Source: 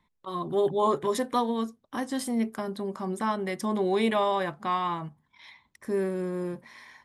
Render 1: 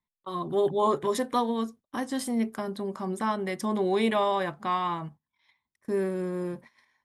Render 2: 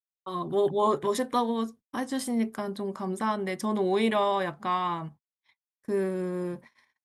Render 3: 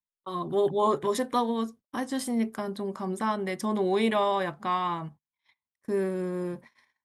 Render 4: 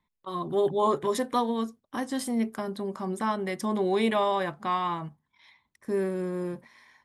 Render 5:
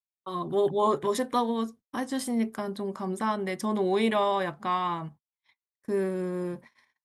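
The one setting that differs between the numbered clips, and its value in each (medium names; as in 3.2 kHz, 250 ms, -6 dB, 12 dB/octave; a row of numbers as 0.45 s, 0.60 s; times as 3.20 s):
gate, range: -19 dB, -59 dB, -33 dB, -7 dB, -46 dB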